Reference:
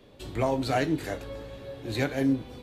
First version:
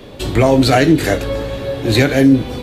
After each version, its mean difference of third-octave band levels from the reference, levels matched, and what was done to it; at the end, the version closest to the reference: 2.0 dB: dynamic bell 920 Hz, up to -6 dB, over -44 dBFS, Q 1.9; loudness maximiser +19.5 dB; trim -1 dB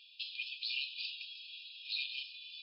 25.0 dB: FFT band-pass 2.4–5.3 kHz; peak limiter -35.5 dBFS, peak gain reduction 11 dB; trim +8 dB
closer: first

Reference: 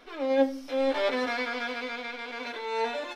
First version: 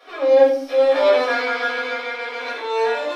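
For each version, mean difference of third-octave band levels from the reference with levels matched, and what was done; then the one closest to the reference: 4.5 dB: elliptic high-pass 290 Hz, stop band 40 dB; simulated room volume 440 m³, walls furnished, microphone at 6 m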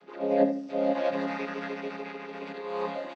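8.0 dB: vocoder on a held chord major triad, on C#3; on a send: feedback delay 76 ms, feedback 26%, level -11 dB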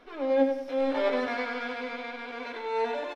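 3.0 dB: treble shelf 2.9 kHz -10 dB; feedback delay 96 ms, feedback 40%, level -7 dB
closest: third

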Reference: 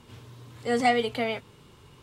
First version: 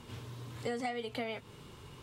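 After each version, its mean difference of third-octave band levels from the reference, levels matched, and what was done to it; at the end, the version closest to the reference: 9.0 dB: compression 12:1, threshold -35 dBFS, peak gain reduction 18 dB; trim +1.5 dB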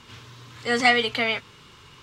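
4.0 dB: high-order bell 2.7 kHz +9.5 dB 3 oct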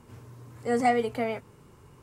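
2.0 dB: peaking EQ 3.5 kHz -13.5 dB 0.98 oct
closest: third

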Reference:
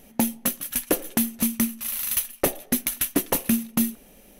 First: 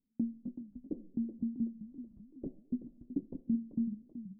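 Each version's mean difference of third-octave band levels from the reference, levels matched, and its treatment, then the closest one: 19.0 dB: gate -46 dBFS, range -20 dB; four-pole ladder low-pass 320 Hz, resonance 45%; modulated delay 382 ms, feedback 42%, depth 179 cents, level -12 dB; trim -6.5 dB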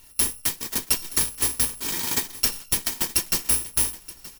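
8.0 dB: bit-reversed sample order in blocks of 256 samples; recorder AGC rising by 6.1 dB/s; on a send: delay 924 ms -18 dB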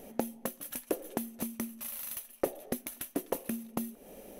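4.5 dB: treble shelf 6.1 kHz +4.5 dB; compression 10:1, threshold -32 dBFS, peak gain reduction 17 dB; peaking EQ 490 Hz +13 dB 2.3 oct; trim -5.5 dB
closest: third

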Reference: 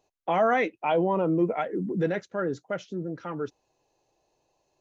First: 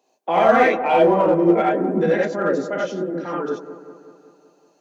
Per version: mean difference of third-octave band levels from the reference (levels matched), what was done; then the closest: 8.0 dB: steep high-pass 180 Hz 36 dB/octave; gated-style reverb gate 110 ms rising, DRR -4 dB; in parallel at -9 dB: hard clipper -18.5 dBFS, distortion -9 dB; on the sum: feedback echo behind a low-pass 188 ms, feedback 60%, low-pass 1.3 kHz, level -12 dB; trim +1 dB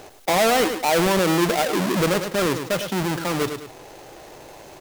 18.0 dB: square wave that keeps the level; bass shelf 190 Hz -3.5 dB; on a send: feedback delay 104 ms, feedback 16%, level -15 dB; on the sum: level flattener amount 50%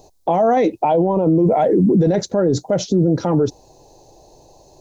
5.0 dB: high-order bell 1.9 kHz -14 dB; in parallel at +0.5 dB: compressor with a negative ratio -30 dBFS; on the sum: bass shelf 97 Hz +9 dB; loudness maximiser +23.5 dB; trim -7.5 dB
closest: third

